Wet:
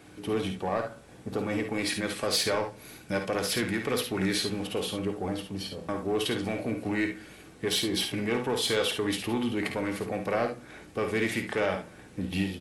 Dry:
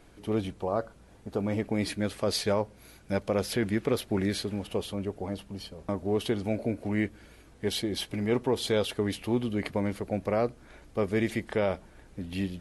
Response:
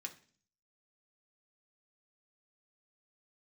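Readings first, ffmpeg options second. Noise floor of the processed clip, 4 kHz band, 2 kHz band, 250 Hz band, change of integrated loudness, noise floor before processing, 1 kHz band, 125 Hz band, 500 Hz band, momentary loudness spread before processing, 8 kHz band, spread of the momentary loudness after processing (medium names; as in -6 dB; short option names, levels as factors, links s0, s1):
-51 dBFS, +5.5 dB, +5.5 dB, -0.5 dB, +0.5 dB, -55 dBFS, +2.5 dB, -2.5 dB, -0.5 dB, 9 LU, +6.0 dB, 10 LU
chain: -filter_complex "[0:a]highpass=110,lowshelf=f=230:g=6.5,acrossover=split=680[s0][s1];[s0]alimiter=limit=0.0631:level=0:latency=1:release=298[s2];[s2][s1]amix=inputs=2:normalize=0,asoftclip=type=tanh:threshold=0.0668,aecho=1:1:53|69:0.398|0.299,asplit=2[s3][s4];[1:a]atrim=start_sample=2205[s5];[s4][s5]afir=irnorm=-1:irlink=0,volume=1.5[s6];[s3][s6]amix=inputs=2:normalize=0"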